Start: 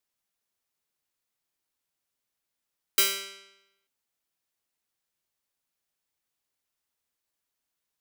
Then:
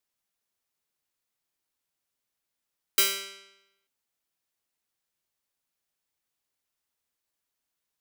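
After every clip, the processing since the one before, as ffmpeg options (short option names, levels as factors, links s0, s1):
-af anull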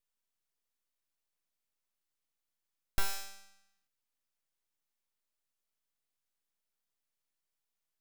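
-filter_complex "[0:a]aeval=exprs='abs(val(0))':c=same,acrossover=split=2600[s0][s1];[s1]acompressor=threshold=0.0251:ratio=4:attack=1:release=60[s2];[s0][s2]amix=inputs=2:normalize=0,volume=0.75"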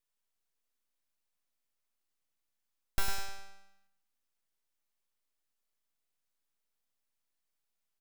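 -filter_complex "[0:a]asplit=2[s0][s1];[s1]adelay=102,lowpass=f=2000:p=1,volume=0.473,asplit=2[s2][s3];[s3]adelay=102,lowpass=f=2000:p=1,volume=0.42,asplit=2[s4][s5];[s5]adelay=102,lowpass=f=2000:p=1,volume=0.42,asplit=2[s6][s7];[s7]adelay=102,lowpass=f=2000:p=1,volume=0.42,asplit=2[s8][s9];[s9]adelay=102,lowpass=f=2000:p=1,volume=0.42[s10];[s0][s2][s4][s6][s8][s10]amix=inputs=6:normalize=0"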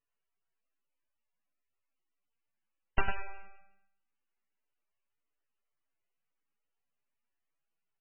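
-filter_complex "[0:a]asplit=2[s0][s1];[s1]acrusher=bits=3:mix=0:aa=0.000001,volume=0.501[s2];[s0][s2]amix=inputs=2:normalize=0" -ar 22050 -c:a libmp3lame -b:a 8k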